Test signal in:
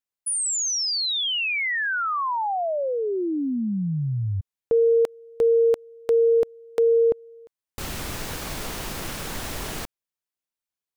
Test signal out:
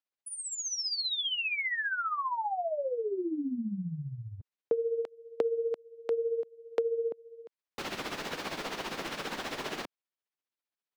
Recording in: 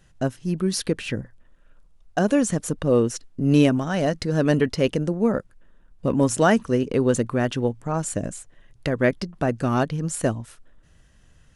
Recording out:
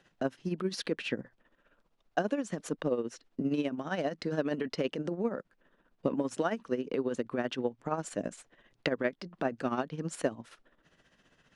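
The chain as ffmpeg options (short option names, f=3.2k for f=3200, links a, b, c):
-filter_complex "[0:a]tremolo=f=15:d=0.65,acrossover=split=190 5200:gain=0.0891 1 0.158[a][b][c];[a][b][c]amix=inputs=3:normalize=0,acompressor=threshold=-32dB:ratio=6:attack=45:release=502:knee=6:detection=peak,volume=1.5dB"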